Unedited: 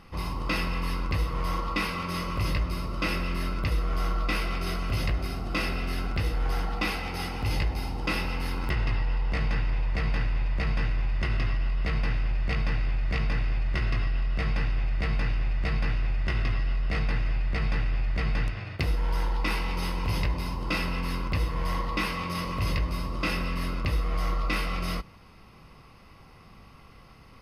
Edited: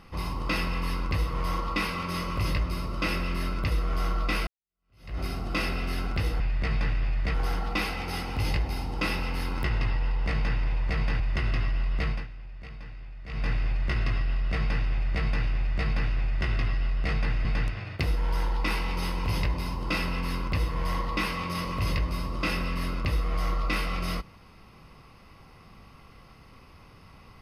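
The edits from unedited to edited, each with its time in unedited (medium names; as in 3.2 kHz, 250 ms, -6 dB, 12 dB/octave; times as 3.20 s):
4.47–5.19 s: fade in exponential
10.26–11.06 s: delete
11.92–13.34 s: dip -15 dB, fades 0.21 s
17.31–18.25 s: move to 6.40 s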